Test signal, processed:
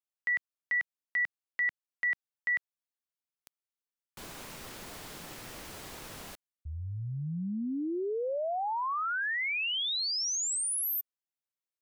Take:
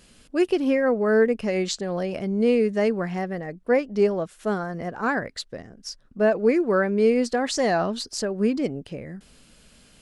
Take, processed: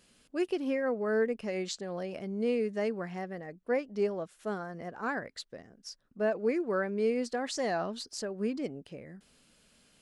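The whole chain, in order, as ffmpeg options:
ffmpeg -i in.wav -af "lowshelf=frequency=97:gain=-10,volume=-9dB" out.wav

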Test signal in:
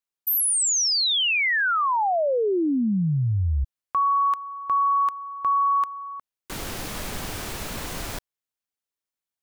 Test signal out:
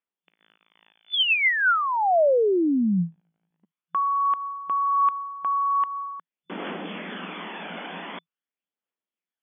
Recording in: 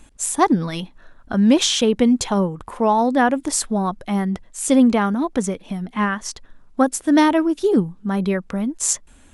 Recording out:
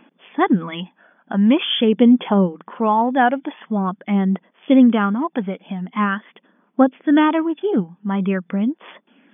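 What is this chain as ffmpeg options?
ffmpeg -i in.wav -af "aphaser=in_gain=1:out_gain=1:delay=1.4:decay=0.4:speed=0.45:type=triangular,afftfilt=real='re*between(b*sr/4096,170,3500)':imag='im*between(b*sr/4096,170,3500)':win_size=4096:overlap=0.75" out.wav

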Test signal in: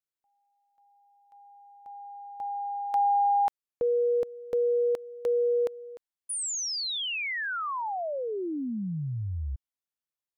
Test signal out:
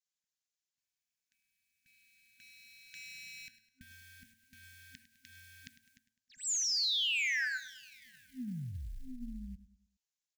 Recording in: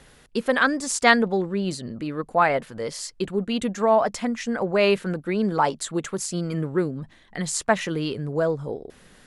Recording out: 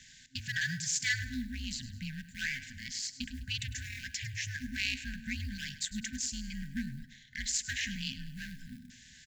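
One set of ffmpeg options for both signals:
ffmpeg -i in.wav -filter_complex "[0:a]bandreject=frequency=118.7:width_type=h:width=4,bandreject=frequency=237.4:width_type=h:width=4,bandreject=frequency=356.1:width_type=h:width=4,bandreject=frequency=474.8:width_type=h:width=4,bandreject=frequency=593.5:width_type=h:width=4,bandreject=frequency=712.2:width_type=h:width=4,bandreject=frequency=830.9:width_type=h:width=4,bandreject=frequency=949.6:width_type=h:width=4,bandreject=frequency=1068.3:width_type=h:width=4,bandreject=frequency=1187:width_type=h:width=4,bandreject=frequency=1305.7:width_type=h:width=4,bandreject=frequency=1424.4:width_type=h:width=4,bandreject=frequency=1543.1:width_type=h:width=4,bandreject=frequency=1661.8:width_type=h:width=4,bandreject=frequency=1780.5:width_type=h:width=4,asplit=2[link_01][link_02];[link_02]adynamicsmooth=sensitivity=8:basefreq=1200,volume=2dB[link_03];[link_01][link_03]amix=inputs=2:normalize=0,aemphasis=mode=production:type=riaa,acompressor=threshold=-33dB:ratio=1.5:attack=0.14:release=48:knee=1:detection=rms,aeval=exprs='val(0)*sin(2*PI*130*n/s)':channel_layout=same,aresample=16000,asoftclip=type=tanh:threshold=-20.5dB,aresample=44100,aecho=1:1:103|206|309|412:0.178|0.0747|0.0314|0.0132,acrusher=bits=8:mode=log:mix=0:aa=0.000001,afftfilt=real='re*(1-between(b*sr/4096,260,1500))':imag='im*(1-between(b*sr/4096,260,1500))':win_size=4096:overlap=0.75,volume=-1dB" out.wav

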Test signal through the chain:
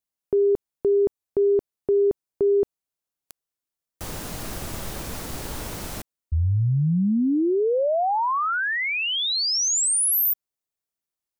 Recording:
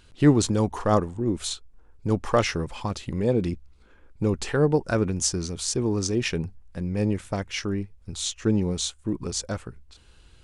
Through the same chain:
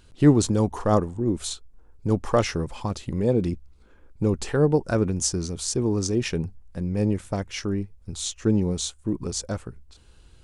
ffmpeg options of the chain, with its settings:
ffmpeg -i in.wav -af "equalizer=frequency=2400:width=0.54:gain=-5,volume=1.5dB" out.wav

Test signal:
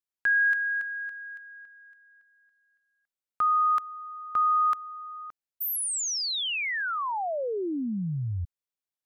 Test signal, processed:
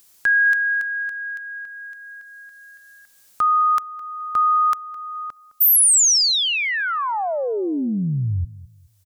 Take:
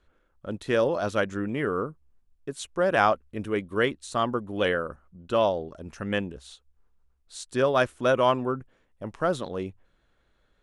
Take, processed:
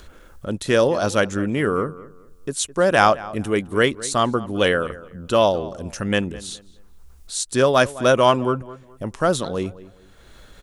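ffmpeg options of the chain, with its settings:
ffmpeg -i in.wav -filter_complex "[0:a]bass=frequency=250:gain=2,treble=frequency=4000:gain=10,asplit=2[link_01][link_02];[link_02]acompressor=mode=upward:threshold=-25dB:ratio=2.5:attack=0.38:release=621:knee=2.83:detection=peak,volume=0dB[link_03];[link_01][link_03]amix=inputs=2:normalize=0,asplit=2[link_04][link_05];[link_05]adelay=211,lowpass=frequency=2200:poles=1,volume=-17.5dB,asplit=2[link_06][link_07];[link_07]adelay=211,lowpass=frequency=2200:poles=1,volume=0.29,asplit=2[link_08][link_09];[link_09]adelay=211,lowpass=frequency=2200:poles=1,volume=0.29[link_10];[link_04][link_06][link_08][link_10]amix=inputs=4:normalize=0" out.wav

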